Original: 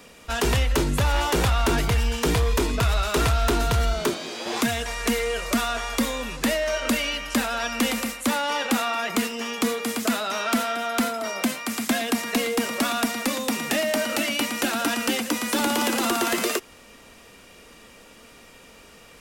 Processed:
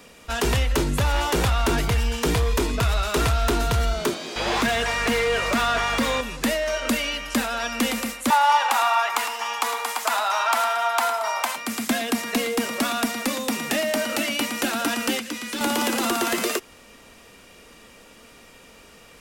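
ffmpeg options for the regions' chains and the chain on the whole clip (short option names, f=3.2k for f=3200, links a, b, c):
-filter_complex "[0:a]asettb=1/sr,asplit=3[a][b][c];[a]atrim=end=4.364[d];[b]atrim=start=4.36:end=6.21,asetpts=PTS-STARTPTS,afade=t=in:d=0.004:c=qsin,afade=t=out:st=1.846:d=0.004:c=qsin,asplit=2[e][f];[f]highpass=f=720:p=1,volume=20dB,asoftclip=type=tanh:threshold=-14dB[g];[e][g]amix=inputs=2:normalize=0,lowpass=f=2.4k:p=1,volume=-6dB,aeval=exprs='val(0)+0.0178*(sin(2*PI*50*n/s)+sin(2*PI*2*50*n/s)/2+sin(2*PI*3*50*n/s)/3+sin(2*PI*4*50*n/s)/4+sin(2*PI*5*50*n/s)/5)':c=same[h];[c]atrim=start=6.206[i];[d][h]acrossfade=d=0.004:c1=hsin:c2=qsin[j];[j][i]acrossfade=d=0.004:c1=qsin:c2=hsin,asettb=1/sr,asplit=3[k][l][m];[k]atrim=end=8.304[n];[l]atrim=start=8.3:end=11.56,asetpts=PTS-STARTPTS,afade=t=in:d=0.004:c=qsin,afade=t=out:st=3.256:d=0.004:c=qsin,highpass=f=890:t=q:w=4.1,aecho=1:1:107:0.299,atrim=end_sample=143766[o];[m]atrim=start=11.556[p];[n][o]acrossfade=d=0.004:c1=hsin:c2=qsin[q];[q][p]acrossfade=d=0.004:c1=qsin:c2=hsin,asettb=1/sr,asplit=3[r][s][t];[r]atrim=end=15.194[u];[s]atrim=start=15.19:end=15.61,asetpts=PTS-STARTPTS,afade=t=in:d=0.004:c=qsin,afade=t=out:st=0.416:d=0.004:c=qsin,equalizer=f=820:t=o:w=2:g=-11.5,acompressor=mode=upward:threshold=-28dB:ratio=2.5:attack=3.2:release=140:knee=2.83:detection=peak,asplit=2[v][w];[w]highpass=f=720:p=1,volume=6dB,asoftclip=type=tanh:threshold=-14.5dB[x];[v][x]amix=inputs=2:normalize=0,lowpass=f=2.8k:p=1,volume=-6dB[y];[t]atrim=start=15.606[z];[u][y]acrossfade=d=0.004:c1=hsin:c2=qsin[aa];[aa][z]acrossfade=d=0.004:c1=qsin:c2=hsin"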